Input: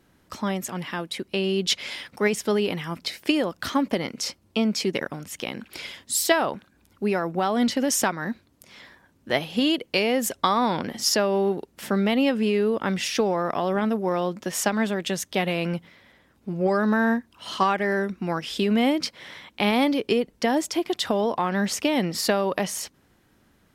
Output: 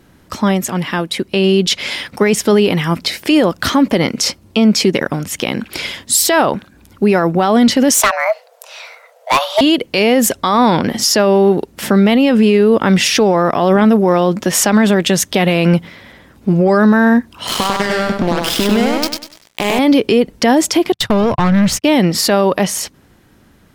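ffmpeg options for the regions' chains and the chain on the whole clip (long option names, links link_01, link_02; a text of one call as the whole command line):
ffmpeg -i in.wav -filter_complex "[0:a]asettb=1/sr,asplit=3[link_01][link_02][link_03];[link_01]atrim=end=7.944[link_04];[link_02]atrim=start=7.94:end=9.61,asetpts=PTS-STARTPTS,afade=type=in:duration=0.004:curve=qsin,afade=type=out:start_time=1.666:duration=0.004:curve=qsin,afreqshift=410,asoftclip=type=hard:threshold=-20.5dB[link_05];[link_03]atrim=start=9.606[link_06];[link_04][link_05]acrossfade=duration=0.004:curve1=hsin:curve2=qsin[link_07];[link_07][link_06]acrossfade=duration=0.004:curve1=qsin:curve2=hsin,asettb=1/sr,asplit=3[link_08][link_09][link_10];[link_08]atrim=end=17.474[link_11];[link_09]atrim=start=17.47:end=19.79,asetpts=PTS-STARTPTS,afade=type=in:duration=0.004:curve=qsin,afade=type=out:start_time=2.316:duration=0.004:curve=qsin,acompressor=threshold=-28dB:ratio=12:attack=3.2:release=140:knee=1:detection=peak,acrusher=bits=4:mix=0:aa=0.5,aecho=1:1:98|196|294|392:0.708|0.227|0.0725|0.0232,atrim=end_sample=102312[link_12];[link_10]atrim=start=19.786[link_13];[link_11][link_12]acrossfade=duration=0.004:curve1=hsin:curve2=qsin[link_14];[link_14][link_13]acrossfade=duration=0.004:curve1=qsin:curve2=hsin,asettb=1/sr,asplit=3[link_15][link_16][link_17];[link_15]atrim=end=20.924[link_18];[link_16]atrim=start=20.92:end=21.84,asetpts=PTS-STARTPTS,afade=type=in:duration=0.004:curve=qsin,afade=type=out:start_time=0.916:duration=0.004:curve=qsin,lowshelf=frequency=190:width_type=q:width=1.5:gain=13.5,agate=range=-42dB:threshold=-30dB:ratio=16:release=100:detection=peak,aeval=exprs='(tanh(15.8*val(0)+0.2)-tanh(0.2))/15.8':channel_layout=same[link_19];[link_17]atrim=start=21.836[link_20];[link_18][link_19]acrossfade=duration=0.004:curve1=hsin:curve2=qsin[link_21];[link_21][link_20]acrossfade=duration=0.004:curve1=qsin:curve2=hsin,lowshelf=frequency=330:gain=3.5,dynaudnorm=framelen=150:gausssize=31:maxgain=4.5dB,alimiter=level_in=13.5dB:limit=-1dB:release=50:level=0:latency=1,volume=-2.5dB" out.wav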